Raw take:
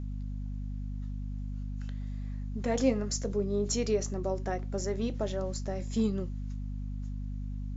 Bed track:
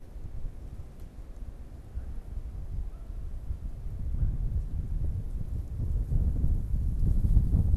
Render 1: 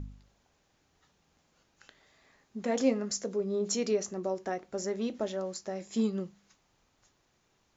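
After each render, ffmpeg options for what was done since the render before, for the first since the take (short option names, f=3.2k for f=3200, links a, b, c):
-af "bandreject=f=50:t=h:w=4,bandreject=f=100:t=h:w=4,bandreject=f=150:t=h:w=4,bandreject=f=200:t=h:w=4,bandreject=f=250:t=h:w=4"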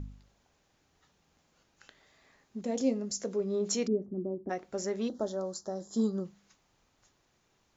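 -filter_complex "[0:a]asettb=1/sr,asplit=3[a][b][c];[a]atrim=end=2.614[d];[b]atrim=start=2.61:end=3.2,asetpts=PTS-STARTPTS,afade=t=in:d=0.004:c=qsin,afade=t=out:st=0.586:d=0.004:c=qsin,equalizer=f=1.5k:t=o:w=1.9:g=-13.5[e];[c]atrim=start=3.196[f];[d][e]acrossfade=d=0.004:c1=hsin:c2=qsin[g];[g][f]acrossfade=d=0.004:c1=qsin:c2=hsin,asplit=3[h][i][j];[h]afade=t=out:st=3.86:d=0.02[k];[i]lowpass=f=290:t=q:w=2,afade=t=in:st=3.86:d=0.02,afade=t=out:st=4.49:d=0.02[l];[j]afade=t=in:st=4.49:d=0.02[m];[k][l][m]amix=inputs=3:normalize=0,asettb=1/sr,asplit=3[n][o][p];[n]atrim=end=5.084[q];[o]atrim=start=5.08:end=6.25,asetpts=PTS-STARTPTS,afade=t=in:d=0.004:c=qsin,afade=t=out:st=1.166:d=0.004:c=qsin,asuperstop=centerf=2400:order=4:qfactor=0.92[r];[p]atrim=start=6.246[s];[q][r]acrossfade=d=0.004:c1=hsin:c2=qsin[t];[t][s]acrossfade=d=0.004:c1=qsin:c2=hsin"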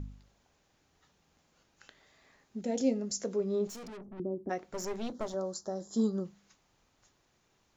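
-filter_complex "[0:a]asettb=1/sr,asplit=3[a][b][c];[a]atrim=end=2.574[d];[b]atrim=start=2.57:end=3.02,asetpts=PTS-STARTPTS,afade=t=in:d=0.004:c=qsin,afade=t=out:st=0.446:d=0.004:c=qsin,asuperstop=centerf=1100:order=4:qfactor=4.3[e];[c]atrim=start=3.016[f];[d][e]acrossfade=d=0.004:c1=hsin:c2=qsin[g];[g][f]acrossfade=d=0.004:c1=qsin:c2=hsin,asettb=1/sr,asplit=3[h][i][j];[h]atrim=end=3.674[k];[i]atrim=start=3.67:end=4.2,asetpts=PTS-STARTPTS,afade=t=in:d=0.004:c=qsin,afade=t=out:st=0.526:d=0.004:c=qsin,aeval=exprs='(tanh(158*val(0)+0.2)-tanh(0.2))/158':c=same[l];[j]atrim=start=4.196[m];[k][l]acrossfade=d=0.004:c1=hsin:c2=qsin[n];[n][m]acrossfade=d=0.004:c1=qsin:c2=hsin,asettb=1/sr,asplit=3[o][p][q];[o]atrim=end=4.734[r];[p]atrim=start=4.73:end=5.34,asetpts=PTS-STARTPTS,afade=t=in:d=0.004:c=qsin,afade=t=out:st=0.606:d=0.004:c=qsin,aeval=exprs='clip(val(0),-1,0.00891)':c=same[s];[q]atrim=start=5.336[t];[r][s]acrossfade=d=0.004:c1=hsin:c2=qsin[u];[u][t]acrossfade=d=0.004:c1=qsin:c2=hsin"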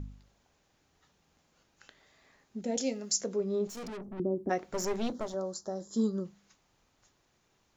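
-filter_complex "[0:a]asettb=1/sr,asplit=3[a][b][c];[a]atrim=end=2.774[d];[b]atrim=start=2.77:end=3.21,asetpts=PTS-STARTPTS,afade=t=in:d=0.004:c=qsin,afade=t=out:st=0.436:d=0.004:c=qsin,tiltshelf=f=800:g=-7[e];[c]atrim=start=3.206[f];[d][e]acrossfade=d=0.004:c1=hsin:c2=qsin[g];[g][f]acrossfade=d=0.004:c1=qsin:c2=hsin,asettb=1/sr,asplit=3[h][i][j];[h]atrim=end=5.854[k];[i]atrim=start=5.85:end=6.26,asetpts=PTS-STARTPTS,afade=t=in:d=0.004:c=qsin,afade=t=out:st=0.406:d=0.004:c=qsin,equalizer=f=740:w=7.7:g=-13[l];[j]atrim=start=6.256[m];[k][l]acrossfade=d=0.004:c1=hsin:c2=qsin[n];[n][m]acrossfade=d=0.004:c1=qsin:c2=hsin,asplit=3[o][p][q];[o]atrim=end=3.772[r];[p]atrim=start=3.768:end=5.202,asetpts=PTS-STARTPTS,volume=4.5dB[s];[q]atrim=start=5.198[t];[r][s]acrossfade=d=0.004:c1=hsin:c2=hsin[u];[u][t]acrossfade=d=0.004:c1=hsin:c2=hsin"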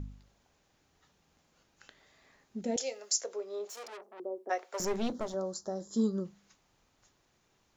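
-filter_complex "[0:a]asettb=1/sr,asplit=3[a][b][c];[a]atrim=end=2.764[d];[b]atrim=start=2.76:end=4.8,asetpts=PTS-STARTPTS,afade=t=in:d=0.004:c=qsin,afade=t=out:st=2.036:d=0.004:c=qsin,highpass=f=480:w=0.5412,highpass=f=480:w=1.3066[e];[c]atrim=start=4.796[f];[d][e]acrossfade=d=0.004:c1=hsin:c2=qsin[g];[g][f]acrossfade=d=0.004:c1=qsin:c2=hsin"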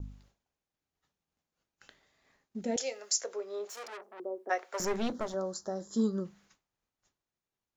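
-af "adynamicequalizer=threshold=0.002:dfrequency=1600:dqfactor=1.1:tfrequency=1600:tqfactor=1.1:attack=5:release=100:ratio=0.375:range=2.5:mode=boostabove:tftype=bell,agate=range=-33dB:threshold=-58dB:ratio=3:detection=peak"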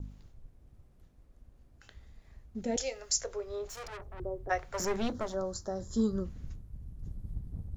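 -filter_complex "[1:a]volume=-16dB[a];[0:a][a]amix=inputs=2:normalize=0"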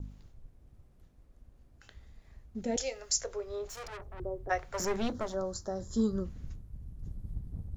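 -af anull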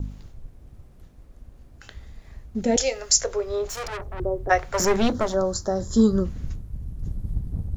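-af "volume=11.5dB"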